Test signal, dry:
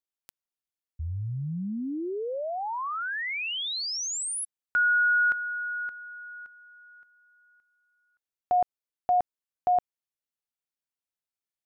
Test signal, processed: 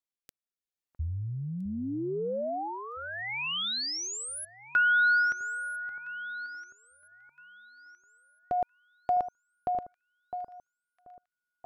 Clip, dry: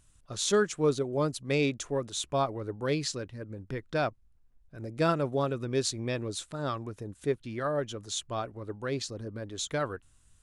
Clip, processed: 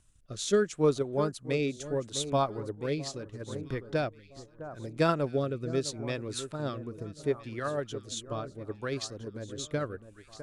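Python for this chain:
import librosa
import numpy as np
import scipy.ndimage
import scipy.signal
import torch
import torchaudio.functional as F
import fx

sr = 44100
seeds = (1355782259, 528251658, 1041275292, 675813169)

y = fx.echo_alternate(x, sr, ms=657, hz=1400.0, feedback_pct=56, wet_db=-11)
y = fx.transient(y, sr, attack_db=3, sustain_db=-2)
y = fx.rotary(y, sr, hz=0.75)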